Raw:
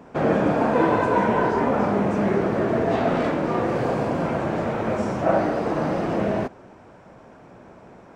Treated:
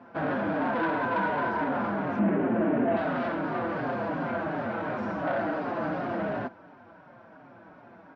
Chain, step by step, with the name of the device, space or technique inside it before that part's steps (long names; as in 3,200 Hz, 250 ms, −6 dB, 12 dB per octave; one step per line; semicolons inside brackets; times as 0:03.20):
barber-pole flanger into a guitar amplifier (barber-pole flanger 5.2 ms −2.8 Hz; soft clipping −22.5 dBFS, distortion −12 dB; loudspeaker in its box 99–4,500 Hz, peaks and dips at 280 Hz +5 dB, 420 Hz −5 dB, 670 Hz +4 dB, 980 Hz +4 dB, 1,500 Hz +9 dB)
0:02.19–0:02.97: drawn EQ curve 140 Hz 0 dB, 230 Hz +9 dB, 1,400 Hz −3 dB, 2,700 Hz +1 dB, 6,100 Hz −27 dB
level −3.5 dB